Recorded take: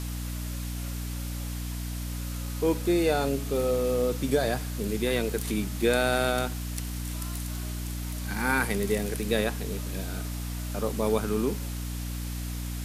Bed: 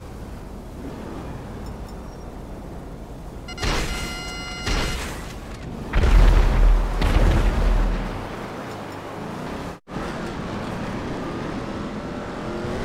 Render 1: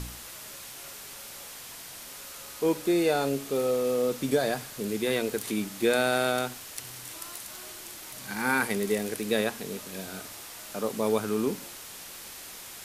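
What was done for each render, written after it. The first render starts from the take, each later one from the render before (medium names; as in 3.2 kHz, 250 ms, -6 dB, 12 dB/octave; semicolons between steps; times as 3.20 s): de-hum 60 Hz, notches 5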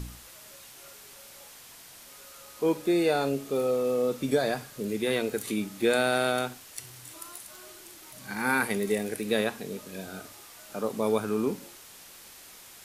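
noise print and reduce 6 dB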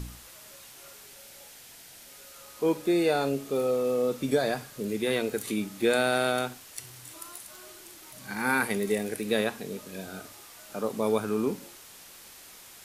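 1.06–2.36 s: peaking EQ 1.1 kHz -7.5 dB 0.34 oct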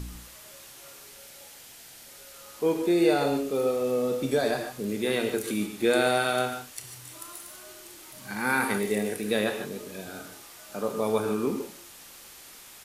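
doubling 29 ms -13 dB; gated-style reverb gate 170 ms rising, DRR 6 dB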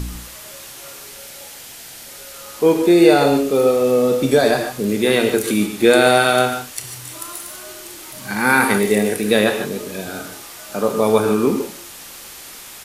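trim +11 dB; peak limiter -1 dBFS, peak gain reduction 1 dB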